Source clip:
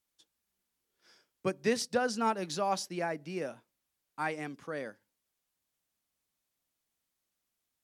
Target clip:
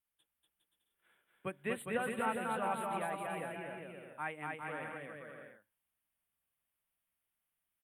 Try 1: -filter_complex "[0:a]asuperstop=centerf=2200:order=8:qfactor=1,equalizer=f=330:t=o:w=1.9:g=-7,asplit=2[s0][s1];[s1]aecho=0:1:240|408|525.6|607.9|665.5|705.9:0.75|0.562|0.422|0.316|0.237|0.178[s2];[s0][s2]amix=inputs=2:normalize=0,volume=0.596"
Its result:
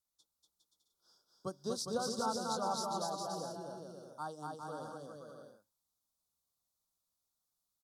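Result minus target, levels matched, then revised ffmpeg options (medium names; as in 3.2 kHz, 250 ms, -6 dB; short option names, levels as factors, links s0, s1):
2 kHz band -13.0 dB
-filter_complex "[0:a]asuperstop=centerf=5500:order=8:qfactor=1,equalizer=f=330:t=o:w=1.9:g=-7,asplit=2[s0][s1];[s1]aecho=0:1:240|408|525.6|607.9|665.5|705.9:0.75|0.562|0.422|0.316|0.237|0.178[s2];[s0][s2]amix=inputs=2:normalize=0,volume=0.596"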